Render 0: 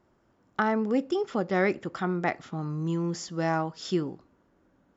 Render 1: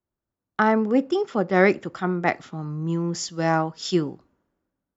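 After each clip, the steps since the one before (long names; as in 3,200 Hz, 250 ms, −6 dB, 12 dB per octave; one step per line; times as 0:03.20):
multiband upward and downward expander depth 70%
level +5 dB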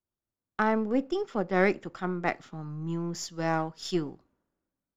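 gain on one half-wave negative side −3 dB
level −5.5 dB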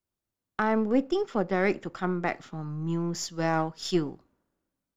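brickwall limiter −16.5 dBFS, peak gain reduction 6.5 dB
level +3 dB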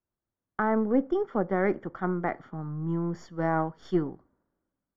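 Savitzky-Golay smoothing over 41 samples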